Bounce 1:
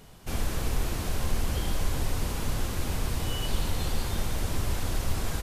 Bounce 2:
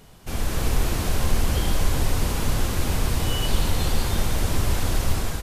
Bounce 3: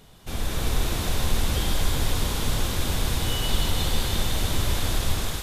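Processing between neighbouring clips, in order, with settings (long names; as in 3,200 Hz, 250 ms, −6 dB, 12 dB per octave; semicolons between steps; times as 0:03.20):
automatic gain control gain up to 5 dB; level +1.5 dB
parametric band 3,600 Hz +7.5 dB 0.25 octaves; on a send: feedback echo with a high-pass in the loop 157 ms, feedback 84%, high-pass 880 Hz, level −6 dB; on the sum: level −2.5 dB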